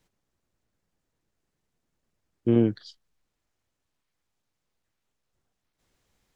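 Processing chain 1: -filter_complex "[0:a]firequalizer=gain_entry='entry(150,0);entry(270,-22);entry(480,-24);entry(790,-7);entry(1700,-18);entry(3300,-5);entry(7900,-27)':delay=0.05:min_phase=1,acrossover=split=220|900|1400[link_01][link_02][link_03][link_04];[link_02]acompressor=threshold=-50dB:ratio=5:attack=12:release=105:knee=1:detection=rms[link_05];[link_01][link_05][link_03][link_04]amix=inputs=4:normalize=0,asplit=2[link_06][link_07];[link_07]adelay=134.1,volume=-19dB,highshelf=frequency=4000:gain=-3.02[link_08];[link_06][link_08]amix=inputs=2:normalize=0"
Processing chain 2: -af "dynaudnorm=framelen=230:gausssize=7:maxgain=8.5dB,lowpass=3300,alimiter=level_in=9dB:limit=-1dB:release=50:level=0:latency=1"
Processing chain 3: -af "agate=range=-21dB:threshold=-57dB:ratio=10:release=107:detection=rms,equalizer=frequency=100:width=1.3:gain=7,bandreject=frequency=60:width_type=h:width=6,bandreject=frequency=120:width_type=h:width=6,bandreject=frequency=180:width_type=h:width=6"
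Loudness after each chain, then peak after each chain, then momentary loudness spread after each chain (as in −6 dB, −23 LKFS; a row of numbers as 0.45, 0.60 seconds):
−34.5, −14.5, −23.5 LKFS; −22.5, −1.0, −9.0 dBFS; 11, 12, 13 LU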